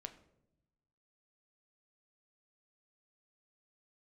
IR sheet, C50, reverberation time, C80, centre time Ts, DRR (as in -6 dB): 13.5 dB, 0.85 s, 16.0 dB, 8 ms, 7.0 dB